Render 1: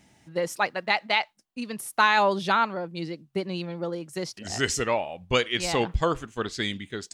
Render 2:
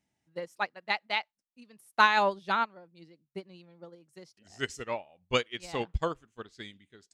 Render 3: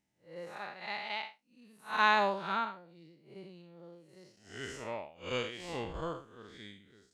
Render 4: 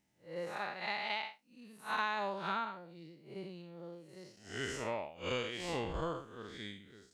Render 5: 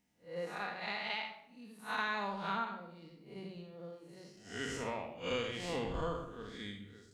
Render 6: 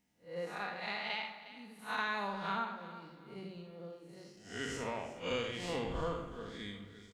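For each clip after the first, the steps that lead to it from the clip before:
upward expansion 2.5:1, over -32 dBFS
spectral blur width 159 ms
compression 5:1, threshold -37 dBFS, peak gain reduction 15 dB; trim +4 dB
simulated room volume 2500 m³, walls furnished, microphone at 1.8 m; trim -1.5 dB
feedback delay 359 ms, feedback 29%, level -15 dB

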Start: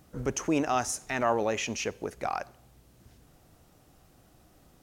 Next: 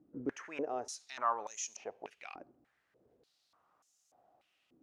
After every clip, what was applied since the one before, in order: step-sequenced band-pass 3.4 Hz 300–6600 Hz; trim +1 dB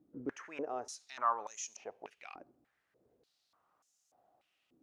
dynamic bell 1.2 kHz, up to +4 dB, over -50 dBFS, Q 1.6; trim -2.5 dB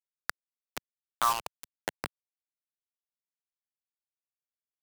high-pass sweep 1.5 kHz -> 500 Hz, 0.48–2.13 s; bit crusher 5-bit; three bands compressed up and down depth 70%; trim +6.5 dB

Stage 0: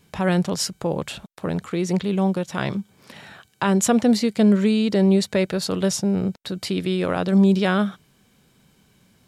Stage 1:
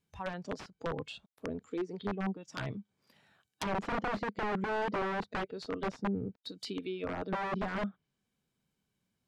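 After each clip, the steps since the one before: spectral noise reduction 16 dB; integer overflow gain 18 dB; low-pass that closes with the level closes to 1.6 kHz, closed at -24 dBFS; trim -8 dB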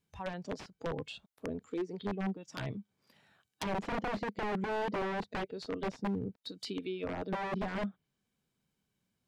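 dynamic bell 1.3 kHz, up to -5 dB, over -53 dBFS, Q 2.2; hard clipper -29 dBFS, distortion -24 dB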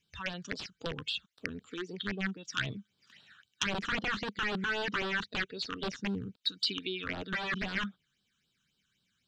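high-order bell 2.9 kHz +14.5 dB 2.7 oct; phase shifter stages 8, 3.8 Hz, lowest notch 610–2100 Hz; trim -1 dB

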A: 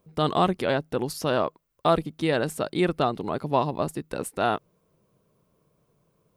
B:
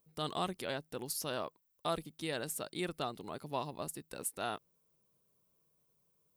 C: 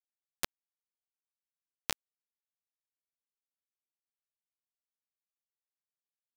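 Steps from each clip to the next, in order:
pre-emphasis filter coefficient 0.8; trim -1.5 dB
knee-point frequency compression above 2.5 kHz 1.5:1; bit crusher 4-bit; trim +8 dB

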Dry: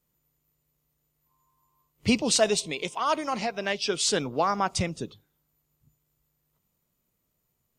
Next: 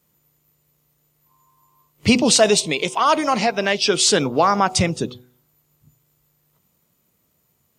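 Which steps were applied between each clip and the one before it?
de-hum 124 Hz, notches 7; in parallel at +1 dB: peak limiter -20 dBFS, peak gain reduction 11 dB; on the sum: high-pass 77 Hz; trim +4.5 dB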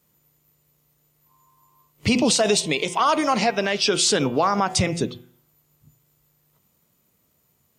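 de-hum 171.6 Hz, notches 20; peak limiter -10 dBFS, peak gain reduction 9 dB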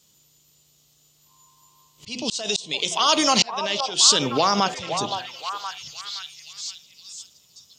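high-order bell 4.7 kHz +14.5 dB; slow attack 661 ms; repeats whose band climbs or falls 518 ms, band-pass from 760 Hz, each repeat 0.7 oct, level -5 dB

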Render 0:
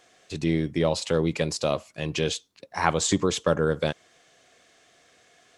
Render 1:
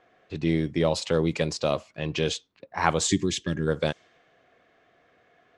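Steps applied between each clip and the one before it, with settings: time-frequency box 3.08–3.67 s, 400–1600 Hz -17 dB; level-controlled noise filter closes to 1.8 kHz, open at -19 dBFS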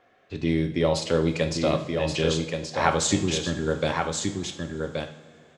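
delay 1126 ms -5 dB; two-slope reverb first 0.53 s, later 3.3 s, from -18 dB, DRR 5.5 dB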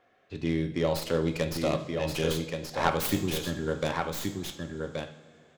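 tracing distortion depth 0.21 ms; trim -4.5 dB

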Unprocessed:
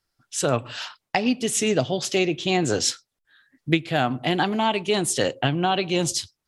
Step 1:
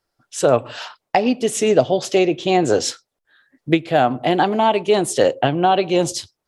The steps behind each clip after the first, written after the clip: peaking EQ 570 Hz +10.5 dB 2 oct; trim -1 dB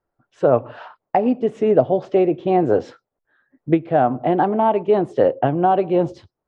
low-pass 1.2 kHz 12 dB/octave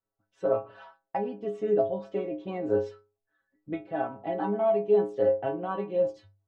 inharmonic resonator 98 Hz, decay 0.43 s, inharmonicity 0.008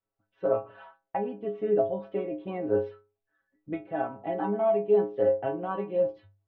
low-pass 3.2 kHz 24 dB/octave

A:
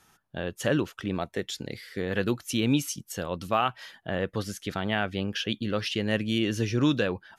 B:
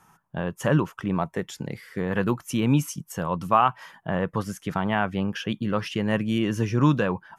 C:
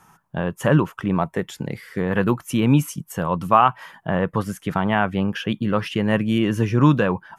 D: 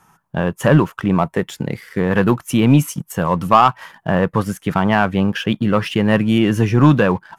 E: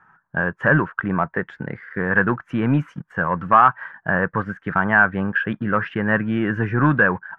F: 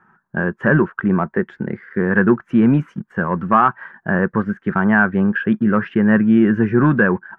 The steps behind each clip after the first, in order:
fifteen-band graphic EQ 160 Hz +10 dB, 1 kHz +12 dB, 4 kHz -10 dB
dynamic bell 5.7 kHz, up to -6 dB, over -54 dBFS, Q 1.5; trim +4.5 dB
waveshaping leveller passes 1; trim +1.5 dB
resonant low-pass 1.6 kHz, resonance Q 6.1; trim -7 dB
small resonant body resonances 220/360 Hz, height 12 dB, ringing for 45 ms; trim -1.5 dB

